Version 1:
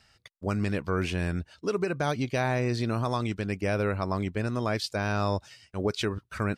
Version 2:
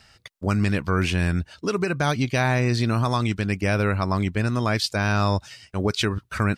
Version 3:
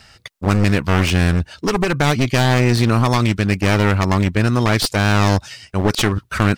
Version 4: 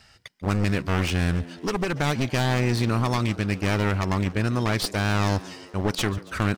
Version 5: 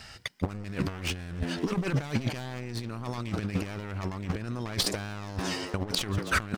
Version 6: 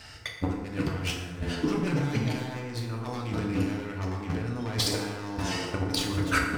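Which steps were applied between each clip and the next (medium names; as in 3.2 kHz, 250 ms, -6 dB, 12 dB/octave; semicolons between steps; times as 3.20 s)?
dynamic bell 490 Hz, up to -6 dB, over -41 dBFS, Q 0.88; trim +8 dB
one-sided wavefolder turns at -24 dBFS; trim +7.5 dB
frequency-shifting echo 141 ms, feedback 64%, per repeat +83 Hz, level -20 dB; trim -8 dB
compressor with a negative ratio -30 dBFS, ratio -0.5
FDN reverb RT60 1.3 s, low-frequency decay 0.9×, high-frequency decay 0.55×, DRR -1.5 dB; trim -2 dB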